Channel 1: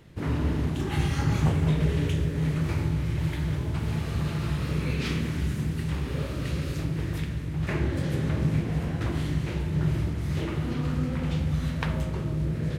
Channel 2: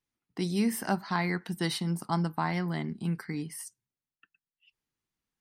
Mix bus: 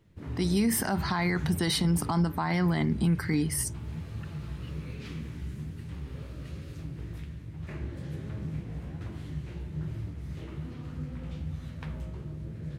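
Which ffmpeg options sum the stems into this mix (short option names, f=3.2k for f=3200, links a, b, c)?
-filter_complex "[0:a]lowshelf=f=250:g=5.5,flanger=delay=9.2:depth=8.2:regen=46:speed=1.2:shape=sinusoidal,volume=-10dB[a];[1:a]bandreject=f=2.7k:w=14,dynaudnorm=f=240:g=5:m=9dB,volume=1.5dB[b];[a][b]amix=inputs=2:normalize=0,alimiter=limit=-18dB:level=0:latency=1:release=51"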